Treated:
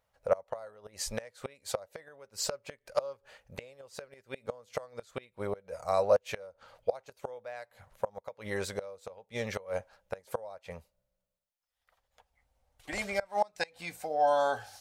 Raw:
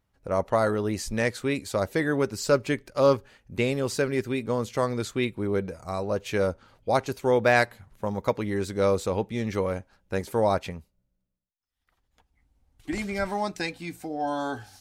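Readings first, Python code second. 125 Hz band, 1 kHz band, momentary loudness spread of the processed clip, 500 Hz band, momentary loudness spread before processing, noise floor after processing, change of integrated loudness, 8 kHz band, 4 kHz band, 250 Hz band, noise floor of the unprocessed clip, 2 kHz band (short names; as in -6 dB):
-16.5 dB, -5.0 dB, 19 LU, -7.5 dB, 10 LU, -83 dBFS, -7.5 dB, -3.5 dB, -6.0 dB, -18.0 dB, -77 dBFS, -10.5 dB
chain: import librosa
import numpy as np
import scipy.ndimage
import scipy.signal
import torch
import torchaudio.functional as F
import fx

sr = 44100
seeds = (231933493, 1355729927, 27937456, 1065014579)

y = fx.gate_flip(x, sr, shuts_db=-17.0, range_db=-26)
y = fx.low_shelf_res(y, sr, hz=420.0, db=-8.5, q=3.0)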